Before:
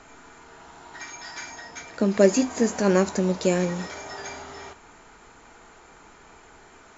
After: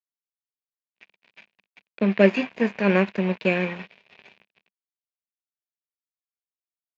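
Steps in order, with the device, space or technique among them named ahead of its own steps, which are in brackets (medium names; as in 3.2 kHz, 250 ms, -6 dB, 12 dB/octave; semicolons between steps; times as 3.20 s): blown loudspeaker (crossover distortion -32 dBFS; cabinet simulation 140–3600 Hz, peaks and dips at 200 Hz +6 dB, 290 Hz -7 dB, 820 Hz -4 dB, 1.3 kHz -9 dB, 2.5 kHz +10 dB); dynamic bell 1.6 kHz, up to +7 dB, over -41 dBFS, Q 0.78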